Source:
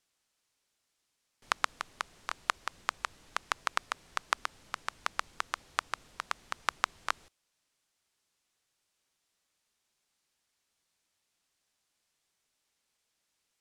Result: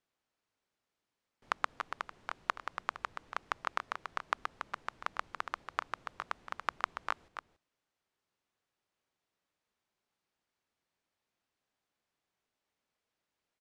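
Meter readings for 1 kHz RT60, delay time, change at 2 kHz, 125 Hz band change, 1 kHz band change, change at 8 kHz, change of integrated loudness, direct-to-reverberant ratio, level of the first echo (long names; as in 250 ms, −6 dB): no reverb audible, 283 ms, −4.0 dB, −1.0 dB, −2.0 dB, −13.5 dB, −3.5 dB, no reverb audible, −8.5 dB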